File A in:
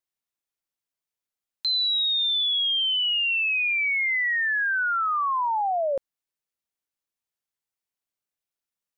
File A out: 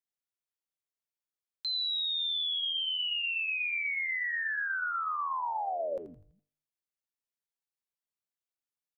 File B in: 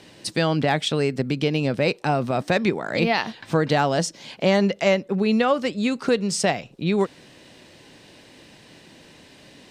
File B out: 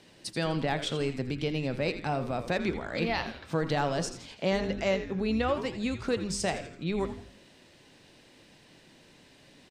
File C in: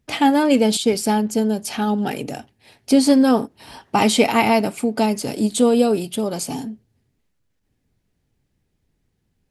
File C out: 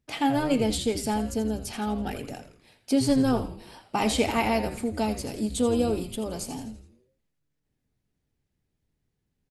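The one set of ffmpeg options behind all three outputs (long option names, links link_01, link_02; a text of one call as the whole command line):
ffmpeg -i in.wav -filter_complex "[0:a]bandreject=frequency=100.4:width_type=h:width=4,bandreject=frequency=200.8:width_type=h:width=4,bandreject=frequency=301.2:width_type=h:width=4,bandreject=frequency=401.6:width_type=h:width=4,bandreject=frequency=502:width_type=h:width=4,bandreject=frequency=602.4:width_type=h:width=4,bandreject=frequency=702.8:width_type=h:width=4,bandreject=frequency=803.2:width_type=h:width=4,bandreject=frequency=903.6:width_type=h:width=4,bandreject=frequency=1004:width_type=h:width=4,bandreject=frequency=1104.4:width_type=h:width=4,bandreject=frequency=1204.8:width_type=h:width=4,bandreject=frequency=1305.2:width_type=h:width=4,bandreject=frequency=1405.6:width_type=h:width=4,bandreject=frequency=1506:width_type=h:width=4,bandreject=frequency=1606.4:width_type=h:width=4,bandreject=frequency=1706.8:width_type=h:width=4,bandreject=frequency=1807.2:width_type=h:width=4,bandreject=frequency=1907.6:width_type=h:width=4,bandreject=frequency=2008:width_type=h:width=4,bandreject=frequency=2108.4:width_type=h:width=4,bandreject=frequency=2208.8:width_type=h:width=4,bandreject=frequency=2309.2:width_type=h:width=4,bandreject=frequency=2409.6:width_type=h:width=4,bandreject=frequency=2510:width_type=h:width=4,bandreject=frequency=2610.4:width_type=h:width=4,bandreject=frequency=2710.8:width_type=h:width=4,bandreject=frequency=2811.2:width_type=h:width=4,bandreject=frequency=2911.6:width_type=h:width=4,bandreject=frequency=3012:width_type=h:width=4,bandreject=frequency=3112.4:width_type=h:width=4,bandreject=frequency=3212.8:width_type=h:width=4,bandreject=frequency=3313.2:width_type=h:width=4,asplit=6[link_01][link_02][link_03][link_04][link_05][link_06];[link_02]adelay=83,afreqshift=-150,volume=-11dB[link_07];[link_03]adelay=166,afreqshift=-300,volume=-17.6dB[link_08];[link_04]adelay=249,afreqshift=-450,volume=-24.1dB[link_09];[link_05]adelay=332,afreqshift=-600,volume=-30.7dB[link_10];[link_06]adelay=415,afreqshift=-750,volume=-37.2dB[link_11];[link_01][link_07][link_08][link_09][link_10][link_11]amix=inputs=6:normalize=0,volume=-8.5dB" out.wav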